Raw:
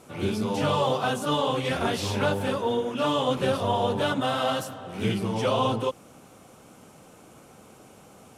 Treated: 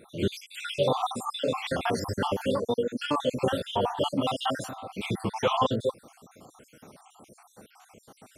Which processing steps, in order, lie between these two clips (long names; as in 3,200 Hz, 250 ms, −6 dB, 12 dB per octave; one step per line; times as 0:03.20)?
time-frequency cells dropped at random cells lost 62%
low-shelf EQ 91 Hz −5 dB
level +2 dB